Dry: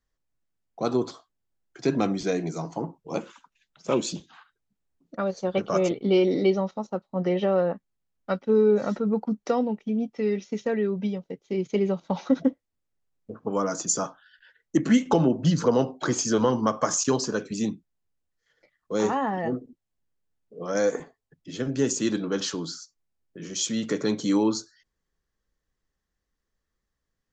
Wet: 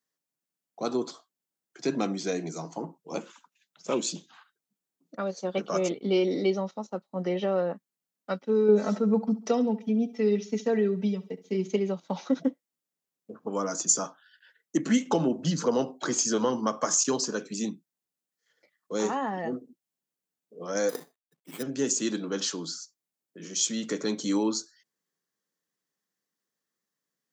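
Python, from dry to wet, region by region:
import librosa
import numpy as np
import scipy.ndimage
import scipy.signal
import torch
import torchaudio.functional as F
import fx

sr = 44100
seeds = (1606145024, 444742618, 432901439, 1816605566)

y = fx.chain(x, sr, fx.comb(ms=4.6, depth=0.84),
    fx.echo_feedback(ms=68, feedback_pct=40, wet_db=-17.0), at=(8.68, 11.76))
y = fx.chain(y, sr, fx.law_mismatch(coded='A'),
    fx.resample_bad(factor=8, down='none', up='hold'), at=(20.89, 21.63))
y = scipy.signal.sosfilt(scipy.signal.butter(4, 160.0, 'highpass', fs=sr, output='sos'), y)
y = fx.high_shelf(y, sr, hz=5400.0, db=10.0)
y = y * 10.0 ** (-4.0 / 20.0)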